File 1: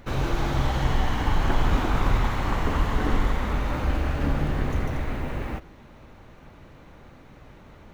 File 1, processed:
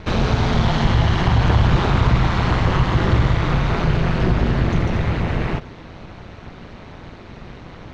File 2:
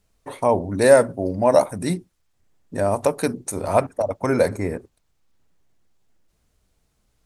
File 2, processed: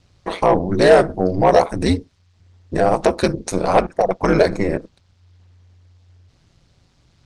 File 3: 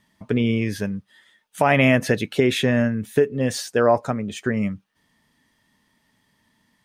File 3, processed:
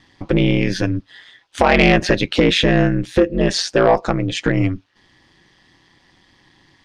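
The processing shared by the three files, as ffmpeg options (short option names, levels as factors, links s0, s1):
-filter_complex "[0:a]asplit=2[s0][s1];[s1]acompressor=threshold=0.0398:ratio=6,volume=1.19[s2];[s0][s2]amix=inputs=2:normalize=0,aeval=exprs='val(0)*sin(2*PI*90*n/s)':c=same,acontrast=85,lowpass=f=4800:t=q:w=1.5,volume=0.891"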